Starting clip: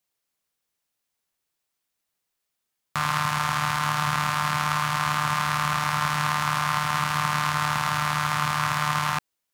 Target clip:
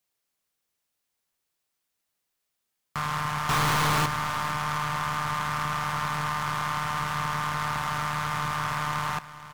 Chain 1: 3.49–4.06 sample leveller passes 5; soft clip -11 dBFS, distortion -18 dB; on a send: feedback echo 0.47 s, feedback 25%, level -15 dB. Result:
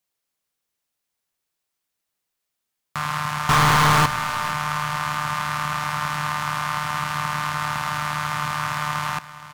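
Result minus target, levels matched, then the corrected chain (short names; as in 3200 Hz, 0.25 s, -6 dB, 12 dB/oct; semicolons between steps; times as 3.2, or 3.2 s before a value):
soft clip: distortion -12 dB
3.49–4.06 sample leveller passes 5; soft clip -22 dBFS, distortion -6 dB; on a send: feedback echo 0.47 s, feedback 25%, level -15 dB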